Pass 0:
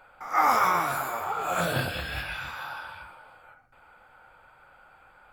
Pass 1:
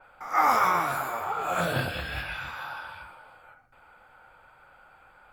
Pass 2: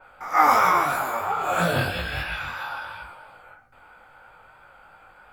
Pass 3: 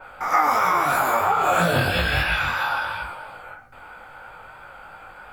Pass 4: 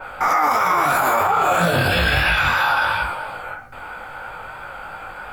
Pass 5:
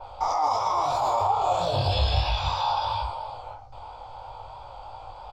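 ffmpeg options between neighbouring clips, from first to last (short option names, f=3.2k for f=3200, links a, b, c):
-af "adynamicequalizer=threshold=0.00708:dfrequency=3900:dqfactor=0.7:tfrequency=3900:tqfactor=0.7:attack=5:release=100:ratio=0.375:range=2:mode=cutabove:tftype=highshelf"
-af "flanger=delay=17.5:depth=3.3:speed=3,volume=7.5dB"
-af "acompressor=threshold=-24dB:ratio=12,volume=8.5dB"
-af "alimiter=level_in=16.5dB:limit=-1dB:release=50:level=0:latency=1,volume=-8dB"
-af "firequalizer=gain_entry='entry(110,0);entry(170,-19);entry(640,-4);entry(970,-2);entry(1500,-29);entry(3400,-5);entry(5100,-1);entry(11000,-30)':delay=0.05:min_phase=1"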